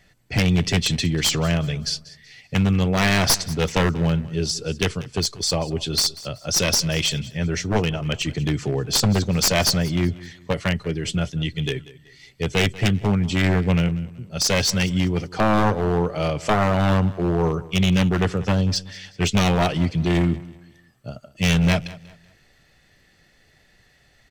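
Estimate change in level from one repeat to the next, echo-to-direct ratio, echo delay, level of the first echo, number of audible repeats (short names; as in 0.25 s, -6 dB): -9.5 dB, -18.5 dB, 0.189 s, -19.0 dB, 2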